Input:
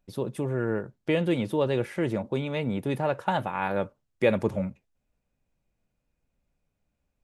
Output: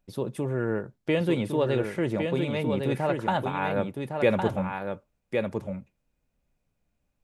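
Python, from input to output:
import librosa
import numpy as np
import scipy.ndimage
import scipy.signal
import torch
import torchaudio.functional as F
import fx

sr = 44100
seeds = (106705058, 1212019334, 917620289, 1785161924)

y = x + 10.0 ** (-5.0 / 20.0) * np.pad(x, (int(1109 * sr / 1000.0), 0))[:len(x)]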